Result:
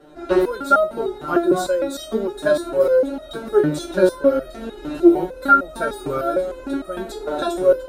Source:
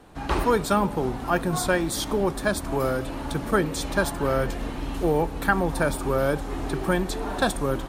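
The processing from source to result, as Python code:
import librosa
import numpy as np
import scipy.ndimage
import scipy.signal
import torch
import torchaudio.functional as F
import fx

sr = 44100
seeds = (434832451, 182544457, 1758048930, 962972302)

y = fx.small_body(x, sr, hz=(370.0, 560.0, 1400.0, 3800.0), ring_ms=50, db=18)
y = fx.resonator_held(y, sr, hz=6.6, low_hz=150.0, high_hz=630.0)
y = y * 10.0 ** (8.5 / 20.0)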